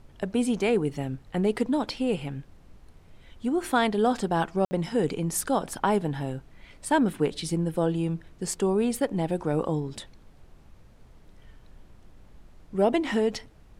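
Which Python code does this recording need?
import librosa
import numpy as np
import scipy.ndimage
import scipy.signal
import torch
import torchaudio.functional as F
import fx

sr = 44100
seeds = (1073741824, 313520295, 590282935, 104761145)

y = fx.fix_ambience(x, sr, seeds[0], print_start_s=10.5, print_end_s=11.0, start_s=4.65, end_s=4.71)
y = fx.noise_reduce(y, sr, print_start_s=10.5, print_end_s=11.0, reduce_db=20.0)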